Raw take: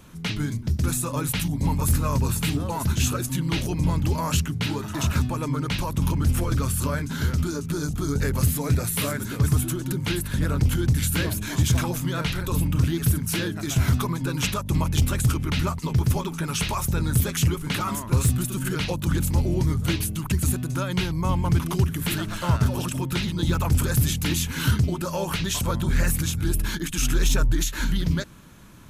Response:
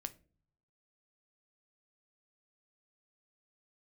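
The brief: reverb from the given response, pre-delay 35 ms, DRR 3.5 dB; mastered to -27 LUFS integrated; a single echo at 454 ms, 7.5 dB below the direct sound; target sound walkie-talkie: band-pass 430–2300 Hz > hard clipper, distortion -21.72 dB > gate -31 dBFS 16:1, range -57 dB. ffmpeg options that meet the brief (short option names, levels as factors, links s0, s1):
-filter_complex "[0:a]aecho=1:1:454:0.422,asplit=2[s0][s1];[1:a]atrim=start_sample=2205,adelay=35[s2];[s1][s2]afir=irnorm=-1:irlink=0,volume=0.944[s3];[s0][s3]amix=inputs=2:normalize=0,highpass=430,lowpass=2300,asoftclip=type=hard:threshold=0.0708,agate=range=0.00141:threshold=0.0282:ratio=16,volume=2"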